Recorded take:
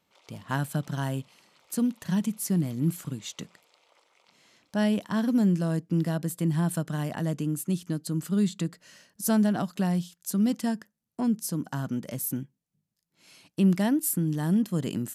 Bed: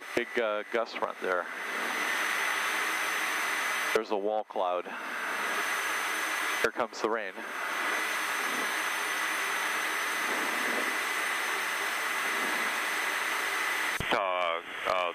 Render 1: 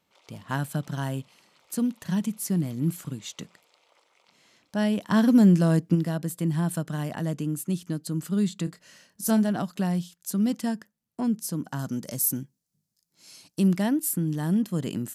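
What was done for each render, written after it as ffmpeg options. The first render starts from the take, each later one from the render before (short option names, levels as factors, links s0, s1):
-filter_complex "[0:a]asplit=3[s0][s1][s2];[s0]afade=t=out:st=5.07:d=0.02[s3];[s1]acontrast=59,afade=t=in:st=5.07:d=0.02,afade=t=out:st=5.94:d=0.02[s4];[s2]afade=t=in:st=5.94:d=0.02[s5];[s3][s4][s5]amix=inputs=3:normalize=0,asettb=1/sr,asplit=3[s6][s7][s8];[s6]atrim=end=8.644[s9];[s7]atrim=start=8.64:end=9.5,asetpts=PTS-STARTPTS,afade=t=in:d=0.004:c=qsin,afade=t=out:st=0.856:d=0.004:c=qsin,asplit=2[s10][s11];[s11]adelay=27,volume=0.299[s12];[s10][s12]amix=inputs=2:normalize=0,atrim=end_sample=37926[s13];[s8]atrim=start=9.496[s14];[s9][s13]acrossfade=d=0.004:c1=hsin:c2=qsin[s15];[s15][s14]acrossfade=d=0.004:c1=qsin:c2=hsin,asettb=1/sr,asplit=3[s16][s17][s18];[s16]atrim=end=11.794[s19];[s17]atrim=start=11.79:end=13.68,asetpts=PTS-STARTPTS,afade=t=in:d=0.004:c=qsin,afade=t=out:st=1.886:d=0.004:c=qsin,highshelf=f=3800:t=q:w=1.5:g=7[s20];[s18]atrim=start=13.676[s21];[s19][s20]acrossfade=d=0.004:c1=hsin:c2=qsin[s22];[s22][s21]acrossfade=d=0.004:c1=qsin:c2=hsin"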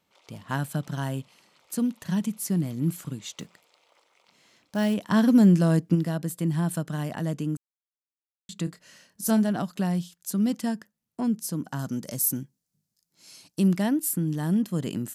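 -filter_complex "[0:a]asettb=1/sr,asplit=3[s0][s1][s2];[s0]atrim=end=3.374[s3];[s1]atrim=start=3.37:end=4.94,asetpts=PTS-STARTPTS,afade=t=in:d=0.004:c=qsin,afade=t=out:st=1.566:d=0.004:c=qsin,acrusher=bits=6:mode=log:mix=0:aa=0.000001[s4];[s2]atrim=start=4.936[s5];[s3][s4]acrossfade=d=0.004:c1=hsin:c2=qsin[s6];[s6][s5]acrossfade=d=0.004:c1=qsin:c2=hsin,asplit=3[s7][s8][s9];[s7]atrim=end=7.57,asetpts=PTS-STARTPTS,afade=t=out:st=7.566:d=0.004:c=hsin[s10];[s8]atrim=start=7.57:end=8.49,asetpts=PTS-STARTPTS,volume=0[s11];[s9]atrim=start=8.49,asetpts=PTS-STARTPTS,afade=t=in:d=0.004:c=hsin[s12];[s10][s11][s12]concat=n=3:v=0:a=1"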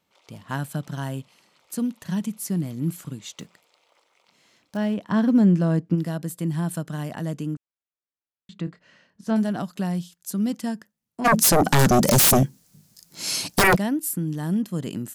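-filter_complex "[0:a]asettb=1/sr,asplit=3[s0][s1][s2];[s0]atrim=end=4.774[s3];[s1]atrim=start=4.77:end=5.98,asetpts=PTS-STARTPTS,afade=t=in:d=0.004:c=qsin,afade=t=out:st=1.206:d=0.004:c=qsin,lowpass=f=2200:p=1[s4];[s2]atrim=start=5.976[s5];[s3][s4]acrossfade=d=0.004:c1=hsin:c2=qsin[s6];[s6][s5]acrossfade=d=0.004:c1=qsin:c2=hsin,asettb=1/sr,asplit=3[s7][s8][s9];[s7]atrim=end=7.544[s10];[s8]atrim=start=7.54:end=9.36,asetpts=PTS-STARTPTS,afade=t=in:d=0.004:c=qsin,afade=t=out:st=1.816:d=0.004:c=qsin,lowpass=2800[s11];[s9]atrim=start=9.356[s12];[s10][s11]acrossfade=d=0.004:c1=hsin:c2=qsin[s13];[s13][s12]acrossfade=d=0.004:c1=qsin:c2=hsin,asplit=3[s14][s15][s16];[s14]afade=t=out:st=11.24:d=0.02[s17];[s15]aeval=exprs='0.237*sin(PI/2*8.91*val(0)/0.237)':c=same,afade=t=in:st=11.24:d=0.02,afade=t=out:st=13.75:d=0.02[s18];[s16]afade=t=in:st=13.75:d=0.02[s19];[s17][s18][s19]amix=inputs=3:normalize=0"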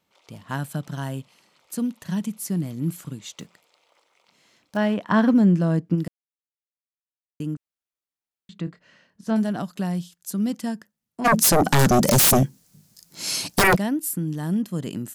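-filter_complex "[0:a]asettb=1/sr,asplit=3[s0][s1][s2];[s0]atrim=end=4.764[s3];[s1]atrim=start=4.76:end=5.34,asetpts=PTS-STARTPTS,afade=t=in:d=0.004:c=qsin,afade=t=out:st=0.576:d=0.004:c=qsin,equalizer=f=1300:t=o:w=3:g=8[s4];[s2]atrim=start=5.336[s5];[s3][s4]acrossfade=d=0.004:c1=hsin:c2=qsin[s6];[s6][s5]acrossfade=d=0.004:c1=qsin:c2=hsin,asplit=3[s7][s8][s9];[s7]atrim=end=6.08,asetpts=PTS-STARTPTS,afade=t=out:st=6.076:d=0.004:c=hsin[s10];[s8]atrim=start=6.08:end=7.4,asetpts=PTS-STARTPTS,volume=0[s11];[s9]atrim=start=7.4,asetpts=PTS-STARTPTS,afade=t=in:d=0.004:c=hsin[s12];[s10][s11][s12]concat=n=3:v=0:a=1"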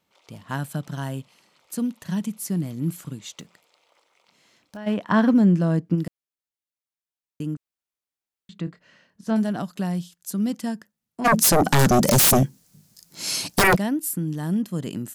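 -filter_complex "[0:a]asplit=3[s0][s1][s2];[s0]afade=t=out:st=3.4:d=0.02[s3];[s1]acompressor=threshold=0.0126:ratio=3:attack=3.2:release=140:knee=1:detection=peak,afade=t=in:st=3.4:d=0.02,afade=t=out:st=4.86:d=0.02[s4];[s2]afade=t=in:st=4.86:d=0.02[s5];[s3][s4][s5]amix=inputs=3:normalize=0"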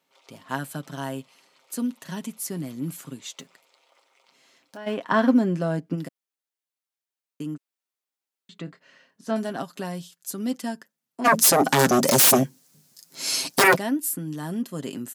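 -af "highpass=250,aecho=1:1:7.5:0.47"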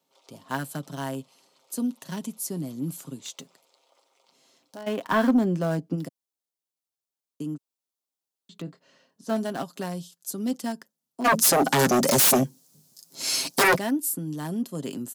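-filter_complex "[0:a]acrossover=split=120|1300|2800[s0][s1][s2][s3];[s2]acrusher=bits=6:mix=0:aa=0.000001[s4];[s0][s1][s4][s3]amix=inputs=4:normalize=0,asoftclip=type=tanh:threshold=0.237"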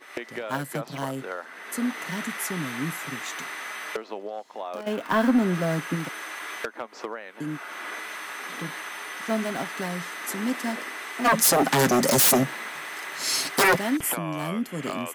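-filter_complex "[1:a]volume=0.562[s0];[0:a][s0]amix=inputs=2:normalize=0"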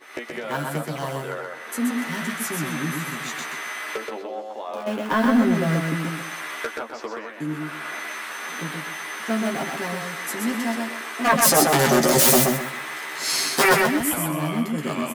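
-filter_complex "[0:a]asplit=2[s0][s1];[s1]adelay=13,volume=0.631[s2];[s0][s2]amix=inputs=2:normalize=0,aecho=1:1:127|254|381|508:0.668|0.18|0.0487|0.0132"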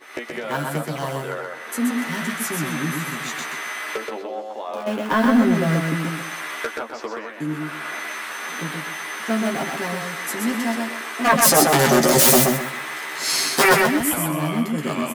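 -af "volume=1.26"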